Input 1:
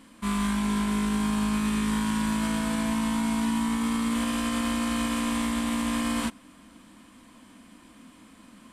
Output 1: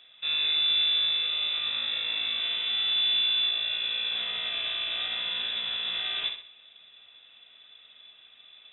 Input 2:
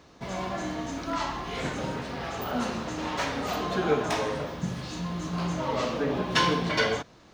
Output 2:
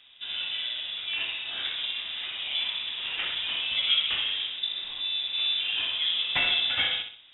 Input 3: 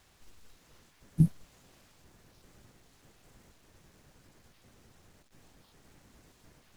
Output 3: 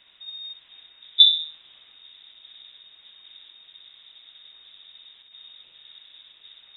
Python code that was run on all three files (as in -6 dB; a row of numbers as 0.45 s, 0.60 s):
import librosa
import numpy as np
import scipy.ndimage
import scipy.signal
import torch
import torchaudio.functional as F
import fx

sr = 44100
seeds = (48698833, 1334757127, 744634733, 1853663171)

p1 = fx.air_absorb(x, sr, metres=340.0)
p2 = p1 + fx.echo_feedback(p1, sr, ms=63, feedback_pct=39, wet_db=-7.0, dry=0)
p3 = fx.freq_invert(p2, sr, carrier_hz=3700)
y = p3 * 10.0 ** (-30 / 20.0) / np.sqrt(np.mean(np.square(p3)))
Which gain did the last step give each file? -2.0 dB, 0.0 dB, +8.5 dB